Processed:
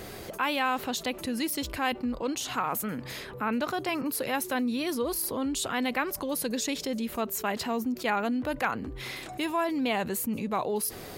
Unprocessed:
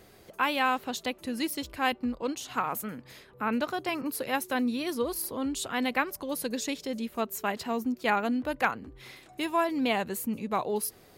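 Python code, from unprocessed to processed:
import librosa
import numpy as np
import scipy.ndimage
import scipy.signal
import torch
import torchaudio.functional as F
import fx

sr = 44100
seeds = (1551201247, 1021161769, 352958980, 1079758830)

y = fx.env_flatten(x, sr, amount_pct=50)
y = y * librosa.db_to_amplitude(-3.0)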